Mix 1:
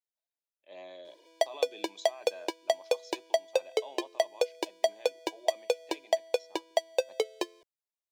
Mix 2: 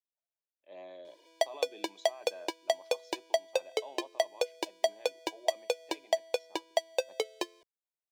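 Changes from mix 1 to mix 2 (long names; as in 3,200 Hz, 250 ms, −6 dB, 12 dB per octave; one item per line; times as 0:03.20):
speech: add high-shelf EQ 2,400 Hz −10 dB
background: add parametric band 440 Hz −4 dB 1 octave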